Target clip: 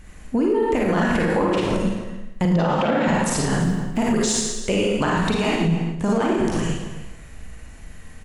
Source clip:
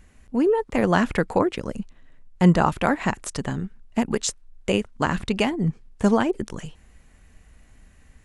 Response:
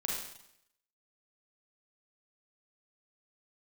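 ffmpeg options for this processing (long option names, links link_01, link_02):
-filter_complex "[0:a]acontrast=90,asettb=1/sr,asplit=3[link_01][link_02][link_03];[link_01]atrim=end=2.454[link_04];[link_02]atrim=start=2.45:end=3.08,asetpts=PTS-STARTPTS,afade=type=in:duration=0.004:curve=qsin,afade=type=out:start_time=0.626:duration=0.004:curve=qsin,highpass=110,equalizer=frequency=230:width_type=q:width=4:gain=7,equalizer=frequency=530:width_type=q:width=4:gain=9,equalizer=frequency=3400:width_type=q:width=4:gain=5,lowpass=frequency=6200:width=0.5412,lowpass=frequency=6200:width=1.3066[link_05];[link_03]atrim=start=3.076[link_06];[link_04][link_05]acrossfade=duration=0.004:curve1=hsin:curve2=qsin[link_07];[link_07][link_06]acrossfade=duration=0.004:curve1=qsin:curve2=hsin,asettb=1/sr,asplit=3[link_08][link_09][link_10];[link_08]atrim=end=3.604[link_11];[link_09]atrim=start=3.6:end=4.01,asetpts=PTS-STARTPTS,afade=type=in:duration=0.004:curve=qsin,afade=type=out:start_time=0.406:duration=0.004:curve=qsin,acrusher=bits=7:mix=0:aa=0.5[link_12];[link_10]atrim=start=4.006[link_13];[link_11][link_12]acrossfade=duration=0.004:curve1=hsin:curve2=qsin[link_14];[link_14][link_13]acrossfade=duration=0.004:curve1=qsin:curve2=hsin,asettb=1/sr,asplit=3[link_15][link_16][link_17];[link_15]atrim=end=5.334[link_18];[link_16]atrim=start=5.33:end=6.22,asetpts=PTS-STARTPTS,afade=type=in:duration=0.004:curve=qsin,afade=type=out:start_time=0.886:duration=0.004:curve=qsin,aeval=exprs='0.75*(cos(1*acos(clip(val(0)/0.75,-1,1)))-cos(1*PI/2))+0.133*(cos(3*acos(clip(val(0)/0.75,-1,1)))-cos(3*PI/2))+0.0106*(cos(6*acos(clip(val(0)/0.75,-1,1)))-cos(6*PI/2))':channel_layout=same[link_19];[link_17]atrim=start=6.216[link_20];[link_18][link_19]acrossfade=duration=0.004:curve1=hsin:curve2=qsin[link_21];[link_21][link_20]acrossfade=duration=0.004:curve1=qsin:curve2=hsin[link_22];[1:a]atrim=start_sample=2205,asetrate=41013,aresample=44100[link_23];[link_22][link_23]afir=irnorm=-1:irlink=0,alimiter=limit=-12dB:level=0:latency=1:release=97,asplit=2[link_24][link_25];[link_25]adelay=274.1,volume=-12dB,highshelf=frequency=4000:gain=-6.17[link_26];[link_24][link_26]amix=inputs=2:normalize=0"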